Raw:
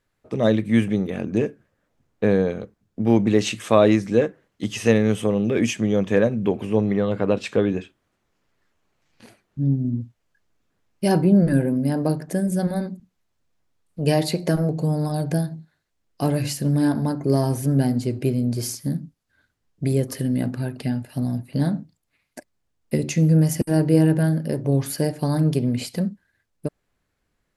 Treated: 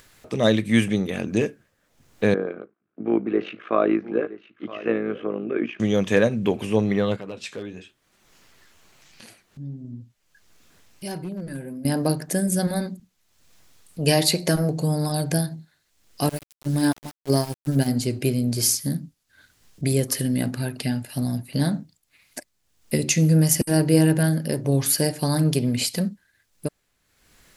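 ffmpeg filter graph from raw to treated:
-filter_complex "[0:a]asettb=1/sr,asplit=3[a][b][c];[a]atrim=end=2.344[d];[b]atrim=start=2.34:end=5.8,asetpts=PTS-STARTPTS,afade=t=in:d=0.004:c=qsin,afade=t=out:st=3.456:d=0.004:c=qsin,tremolo=f=54:d=0.71,highpass=300,equalizer=f=340:t=q:w=4:g=6,equalizer=f=530:t=q:w=4:g=-4,equalizer=f=880:t=q:w=4:g=-7,equalizer=f=1.3k:t=q:w=4:g=4,equalizer=f=1.9k:t=q:w=4:g=-7,lowpass=f=2k:w=0.5412,lowpass=f=2k:w=1.3066,aecho=1:1:969:0.15,atrim=end_sample=152586[e];[c]atrim=start=5.796[f];[d][e]acrossfade=d=0.004:c1=hsin:c2=qsin[g];[g][f]acrossfade=d=0.004:c1=qsin:c2=hsin,asettb=1/sr,asplit=3[h][i][j];[h]atrim=end=7.164[k];[i]atrim=start=7.16:end=11.85,asetpts=PTS-STARTPTS,afade=t=in:d=0.004:c=qsin,afade=t=out:st=4.686:d=0.004:c=qsin,acompressor=threshold=-43dB:ratio=1.5:attack=3.2:release=140:knee=1:detection=peak,flanger=delay=5:depth=8:regen=-48:speed=1:shape=sinusoidal,asoftclip=type=hard:threshold=-25dB[l];[j]atrim=start=11.846[m];[k][l]acrossfade=d=0.004:c1=hsin:c2=qsin[n];[n][m]acrossfade=d=0.004:c1=qsin:c2=hsin,asettb=1/sr,asplit=3[o][p][q];[o]atrim=end=16.294[r];[p]atrim=start=16.29:end=17.88,asetpts=PTS-STARTPTS,afade=t=in:d=0.004:c=qsin,afade=t=out:st=1.586:d=0.004:c=qsin,agate=range=-23dB:threshold=-20dB:ratio=16:release=100:detection=peak,aeval=exprs='val(0)*gte(abs(val(0)),0.00944)':c=same[s];[q]atrim=start=17.876[t];[r][s]acrossfade=d=0.004:c1=hsin:c2=qsin[u];[u][t]acrossfade=d=0.004:c1=qsin:c2=hsin,highshelf=f=2k:g=11.5,acompressor=mode=upward:threshold=-39dB:ratio=2.5,volume=-1dB"

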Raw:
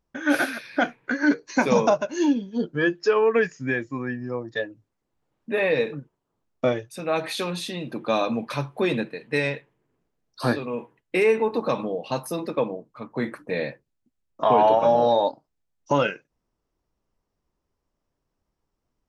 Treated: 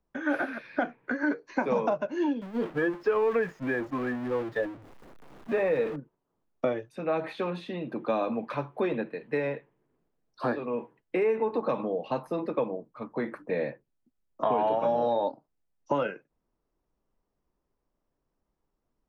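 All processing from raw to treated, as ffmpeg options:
-filter_complex "[0:a]asettb=1/sr,asplit=3[a][b][c];[a]atrim=end=2.414[d];[b]atrim=start=2.41:end=5.96,asetpts=PTS-STARTPTS,afade=t=in:d=0.004:c=qsin,afade=t=out:st=3.546:d=0.004:c=qsin,aeval=exprs='val(0)+0.5*0.0398*sgn(val(0))':c=same,agate=range=-33dB:threshold=-27dB:ratio=3:release=100:detection=peak[e];[c]atrim=start=5.956[f];[d][e]acrossfade=d=0.004:c1=hsin:c2=qsin[g];[g][f]acrossfade=d=0.004:c1=qsin:c2=hsin,equalizer=f=89:t=o:w=1.2:g=-6,acrossover=split=180|420|1600|3400[h][i][j][k][l];[h]acompressor=threshold=-45dB:ratio=4[m];[i]acompressor=threshold=-33dB:ratio=4[n];[j]acompressor=threshold=-26dB:ratio=4[o];[k]acompressor=threshold=-39dB:ratio=4[p];[l]acompressor=threshold=-59dB:ratio=4[q];[m][n][o][p][q]amix=inputs=5:normalize=0,highshelf=f=2.4k:g=-10"

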